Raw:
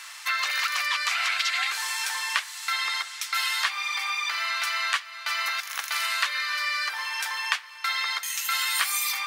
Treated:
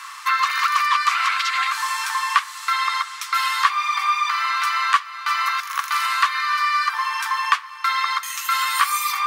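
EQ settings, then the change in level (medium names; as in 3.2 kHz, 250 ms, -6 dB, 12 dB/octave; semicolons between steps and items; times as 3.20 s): resonant high-pass 1.1 kHz, resonance Q 7.3; 0.0 dB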